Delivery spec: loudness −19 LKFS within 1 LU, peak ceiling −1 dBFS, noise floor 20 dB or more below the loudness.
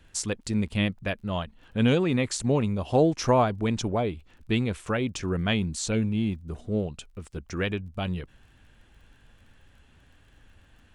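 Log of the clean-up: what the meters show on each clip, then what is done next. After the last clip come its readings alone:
crackle rate 29 per second; integrated loudness −27.0 LKFS; sample peak −10.5 dBFS; target loudness −19.0 LKFS
→ click removal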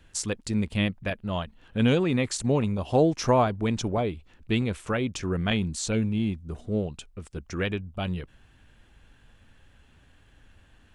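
crackle rate 0 per second; integrated loudness −27.5 LKFS; sample peak −10.5 dBFS; target loudness −19.0 LKFS
→ level +8.5 dB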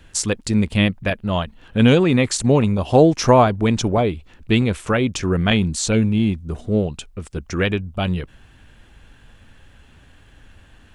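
integrated loudness −19.0 LKFS; sample peak −2.0 dBFS; background noise floor −50 dBFS

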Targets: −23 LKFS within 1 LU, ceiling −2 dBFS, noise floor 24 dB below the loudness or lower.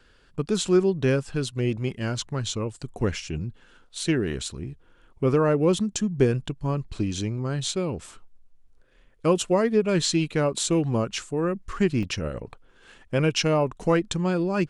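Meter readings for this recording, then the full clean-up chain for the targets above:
number of dropouts 1; longest dropout 1.8 ms; integrated loudness −25.5 LKFS; sample peak −7.5 dBFS; target loudness −23.0 LKFS
→ repair the gap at 0:12.03, 1.8 ms
level +2.5 dB

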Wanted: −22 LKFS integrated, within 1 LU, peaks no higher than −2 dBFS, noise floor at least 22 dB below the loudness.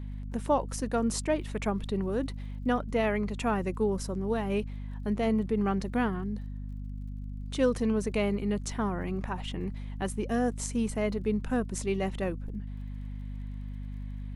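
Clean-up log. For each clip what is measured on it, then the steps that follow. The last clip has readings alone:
crackle rate 38 per second; mains hum 50 Hz; hum harmonics up to 250 Hz; level of the hum −35 dBFS; integrated loudness −31.5 LKFS; sample peak −13.5 dBFS; target loudness −22.0 LKFS
→ click removal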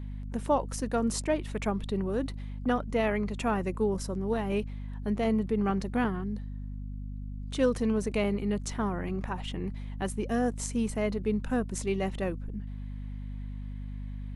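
crackle rate 0.070 per second; mains hum 50 Hz; hum harmonics up to 250 Hz; level of the hum −35 dBFS
→ hum removal 50 Hz, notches 5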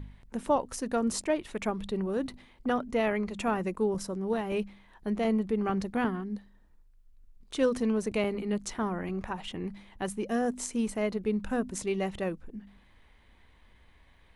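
mains hum none found; integrated loudness −31.5 LKFS; sample peak −14.5 dBFS; target loudness −22.0 LKFS
→ level +9.5 dB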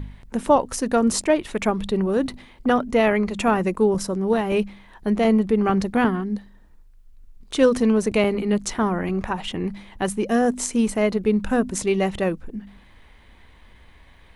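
integrated loudness −22.0 LKFS; sample peak −5.0 dBFS; background noise floor −50 dBFS

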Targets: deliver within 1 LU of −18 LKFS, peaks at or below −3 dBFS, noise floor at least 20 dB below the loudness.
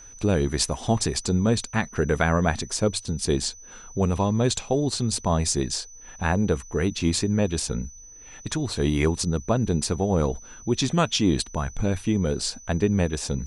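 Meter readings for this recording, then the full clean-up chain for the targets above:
interfering tone 6,000 Hz; level of the tone −44 dBFS; integrated loudness −24.5 LKFS; sample peak −7.0 dBFS; target loudness −18.0 LKFS
→ notch filter 6,000 Hz, Q 30
level +6.5 dB
brickwall limiter −3 dBFS

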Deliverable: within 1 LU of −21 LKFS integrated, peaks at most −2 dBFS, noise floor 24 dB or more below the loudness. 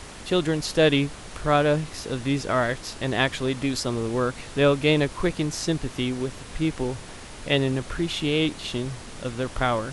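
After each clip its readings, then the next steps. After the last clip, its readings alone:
background noise floor −41 dBFS; target noise floor −49 dBFS; integrated loudness −25.0 LKFS; sample peak −7.5 dBFS; target loudness −21.0 LKFS
→ noise reduction from a noise print 8 dB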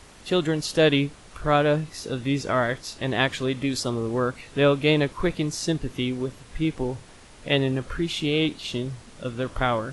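background noise floor −48 dBFS; target noise floor −49 dBFS
→ noise reduction from a noise print 6 dB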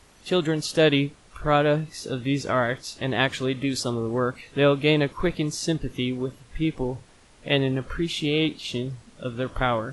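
background noise floor −54 dBFS; integrated loudness −25.0 LKFS; sample peak −7.5 dBFS; target loudness −21.0 LKFS
→ level +4 dB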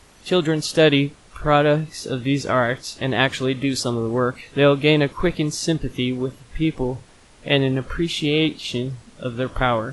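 integrated loudness −21.0 LKFS; sample peak −3.5 dBFS; background noise floor −50 dBFS

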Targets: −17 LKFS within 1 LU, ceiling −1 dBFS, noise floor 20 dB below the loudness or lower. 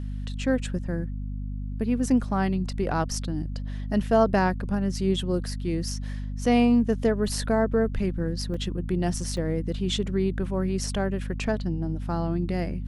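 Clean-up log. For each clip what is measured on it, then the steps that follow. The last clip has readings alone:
number of dropouts 2; longest dropout 3.3 ms; mains hum 50 Hz; hum harmonics up to 250 Hz; level of the hum −29 dBFS; integrated loudness −26.5 LKFS; sample peak −9.0 dBFS; target loudness −17.0 LKFS
→ repair the gap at 0:08.54/0:09.37, 3.3 ms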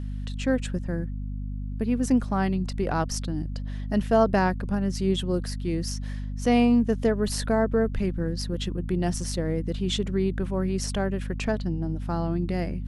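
number of dropouts 0; mains hum 50 Hz; hum harmonics up to 250 Hz; level of the hum −29 dBFS
→ hum removal 50 Hz, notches 5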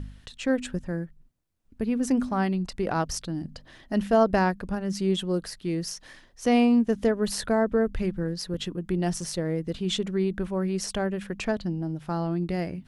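mains hum none found; integrated loudness −27.0 LKFS; sample peak −10.0 dBFS; target loudness −17.0 LKFS
→ level +10 dB
brickwall limiter −1 dBFS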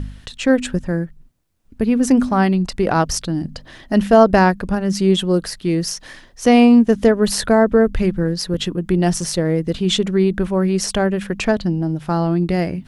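integrated loudness −17.5 LKFS; sample peak −1.0 dBFS; background noise floor −46 dBFS

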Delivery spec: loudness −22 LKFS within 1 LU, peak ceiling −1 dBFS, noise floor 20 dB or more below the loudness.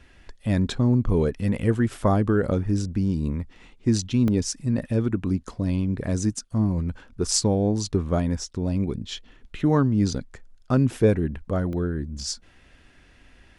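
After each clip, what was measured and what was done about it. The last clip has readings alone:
number of dropouts 2; longest dropout 1.1 ms; integrated loudness −24.5 LKFS; sample peak −4.5 dBFS; target loudness −22.0 LKFS
→ repair the gap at 0:04.28/0:11.73, 1.1 ms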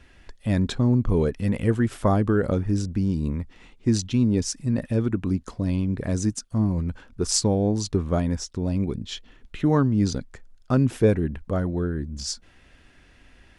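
number of dropouts 0; integrated loudness −24.5 LKFS; sample peak −4.5 dBFS; target loudness −22.0 LKFS
→ level +2.5 dB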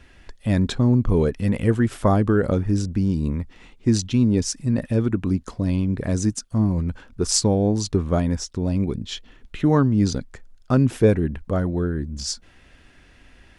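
integrated loudness −22.0 LKFS; sample peak −2.0 dBFS; background noise floor −52 dBFS

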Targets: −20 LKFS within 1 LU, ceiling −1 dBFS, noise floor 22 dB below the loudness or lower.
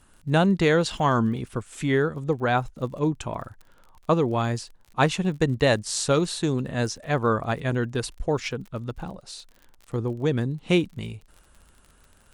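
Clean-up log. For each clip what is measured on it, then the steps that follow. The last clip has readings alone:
crackle rate 37 per second; integrated loudness −25.0 LKFS; sample peak −7.0 dBFS; target loudness −20.0 LKFS
→ click removal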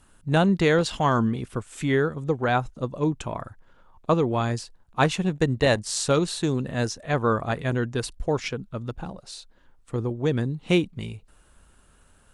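crackle rate 0 per second; integrated loudness −25.0 LKFS; sample peak −7.0 dBFS; target loudness −20.0 LKFS
→ level +5 dB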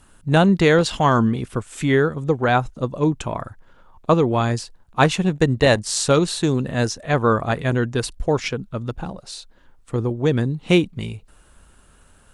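integrated loudness −20.0 LKFS; sample peak −2.0 dBFS; background noise floor −53 dBFS

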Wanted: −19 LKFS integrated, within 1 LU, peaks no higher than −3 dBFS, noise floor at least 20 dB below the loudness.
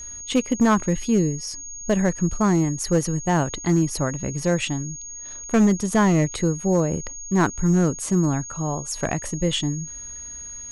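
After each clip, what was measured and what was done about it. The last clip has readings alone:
share of clipped samples 1.1%; peaks flattened at −12.0 dBFS; interfering tone 6,600 Hz; level of the tone −34 dBFS; integrated loudness −22.5 LKFS; sample peak −12.0 dBFS; target loudness −19.0 LKFS
→ clipped peaks rebuilt −12 dBFS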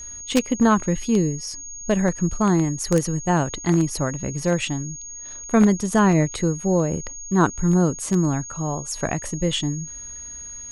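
share of clipped samples 0.0%; interfering tone 6,600 Hz; level of the tone −34 dBFS
→ notch filter 6,600 Hz, Q 30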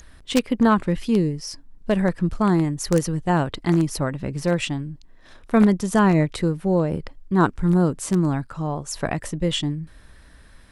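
interfering tone none found; integrated loudness −22.0 LKFS; sample peak −3.0 dBFS; target loudness −19.0 LKFS
→ level +3 dB
brickwall limiter −3 dBFS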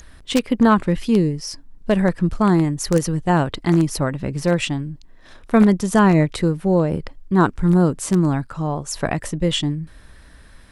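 integrated loudness −19.0 LKFS; sample peak −3.0 dBFS; background noise floor −46 dBFS

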